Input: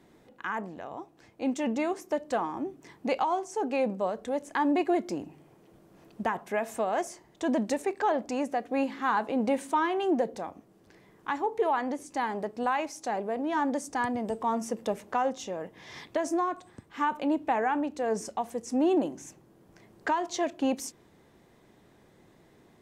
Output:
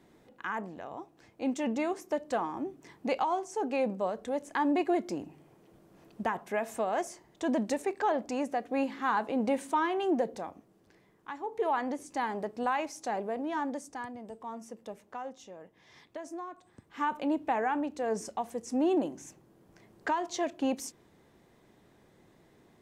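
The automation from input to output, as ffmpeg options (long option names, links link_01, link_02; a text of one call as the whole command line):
ffmpeg -i in.wav -af "volume=16.5dB,afade=type=out:start_time=10.37:duration=1:silence=0.375837,afade=type=in:start_time=11.37:duration=0.36:silence=0.375837,afade=type=out:start_time=13.22:duration=0.9:silence=0.298538,afade=type=in:start_time=16.54:duration=0.55:silence=0.316228" out.wav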